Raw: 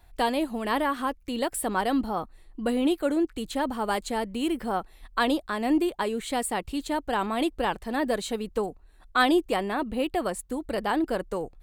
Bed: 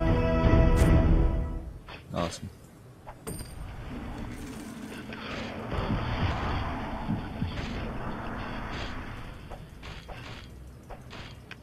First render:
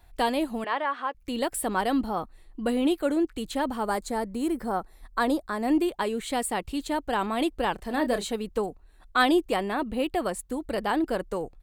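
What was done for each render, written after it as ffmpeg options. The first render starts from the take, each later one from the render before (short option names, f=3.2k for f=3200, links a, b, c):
-filter_complex "[0:a]asettb=1/sr,asplit=3[a][b][c];[a]atrim=end=0.644[d];[b]atrim=start=0.64:end=1.15,asetpts=PTS-STARTPTS,afade=t=in:d=0.004:c=qsin,afade=t=out:st=0.506:d=0.004:c=qsin,highpass=590,lowpass=2.9k[e];[c]atrim=start=1.146[f];[d][e]acrossfade=d=0.004:c1=hsin:c2=qsin[g];[g][f]acrossfade=d=0.004:c1=qsin:c2=hsin,asettb=1/sr,asplit=3[h][i][j];[h]atrim=end=3.854[k];[i]atrim=start=3.85:end=5.68,asetpts=PTS-STARTPTS,afade=t=in:d=0.004:c=qsin,afade=t=out:st=1.826:d=0.004:c=qsin,equalizer=f=2.9k:t=o:w=0.66:g=-12[l];[j]atrim=start=5.676[m];[k][l]acrossfade=d=0.004:c1=hsin:c2=qsin[n];[n][m]acrossfade=d=0.004:c1=qsin:c2=hsin,asplit=3[o][p][q];[o]afade=t=out:st=7.78:d=0.02[r];[p]asplit=2[s][t];[t]adelay=29,volume=-9.5dB[u];[s][u]amix=inputs=2:normalize=0,afade=t=in:st=7.78:d=0.02,afade=t=out:st=8.27:d=0.02[v];[q]afade=t=in:st=8.27:d=0.02[w];[r][v][w]amix=inputs=3:normalize=0"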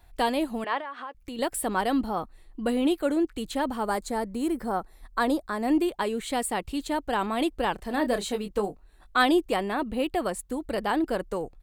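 -filter_complex "[0:a]asettb=1/sr,asplit=3[a][b][c];[a]atrim=end=0.804[d];[b]atrim=start=0.8:end=1.39,asetpts=PTS-STARTPTS,afade=t=in:d=0.004:c=qsin,afade=t=out:st=0.586:d=0.004:c=qsin,acompressor=threshold=-34dB:ratio=4:attack=3.2:release=140:knee=1:detection=peak[e];[c]atrim=start=1.386[f];[d][e]acrossfade=d=0.004:c1=hsin:c2=qsin[g];[g][f]acrossfade=d=0.004:c1=qsin:c2=hsin,asettb=1/sr,asplit=3[h][i][j];[h]atrim=end=8.254[k];[i]atrim=start=8.25:end=9.18,asetpts=PTS-STARTPTS,afade=t=in:d=0.004:c=qsin,afade=t=out:st=0.926:d=0.004:c=qsin,asplit=2[l][m];[m]adelay=20,volume=-6.5dB[n];[l][n]amix=inputs=2:normalize=0,atrim=end_sample=41013[o];[j]atrim=start=9.176[p];[k][o]acrossfade=d=0.004:c1=hsin:c2=qsin[q];[q][p]acrossfade=d=0.004:c1=qsin:c2=hsin"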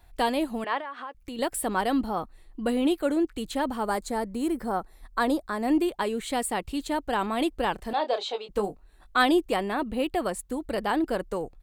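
-filter_complex "[0:a]asettb=1/sr,asplit=3[a][b][c];[a]atrim=end=7.934[d];[b]atrim=start=7.93:end=8.49,asetpts=PTS-STARTPTS,afade=t=in:d=0.004:c=qsin,afade=t=out:st=0.556:d=0.004:c=qsin,highpass=f=430:w=0.5412,highpass=f=430:w=1.3066,equalizer=f=810:t=q:w=4:g=7,equalizer=f=1.8k:t=q:w=4:g=-9,equalizer=f=3.5k:t=q:w=4:g=6,lowpass=f=5.4k:w=0.5412,lowpass=f=5.4k:w=1.3066[e];[c]atrim=start=8.486[f];[d][e]acrossfade=d=0.004:c1=hsin:c2=qsin[g];[g][f]acrossfade=d=0.004:c1=qsin:c2=hsin"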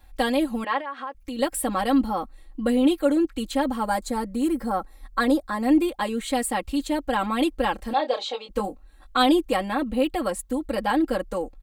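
-af "aecho=1:1:3.7:0.93"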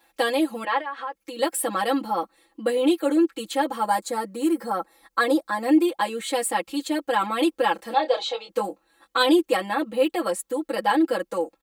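-af "highpass=300,aecho=1:1:6:0.77"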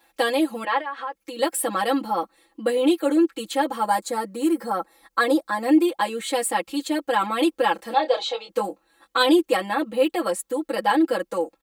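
-af "volume=1dB"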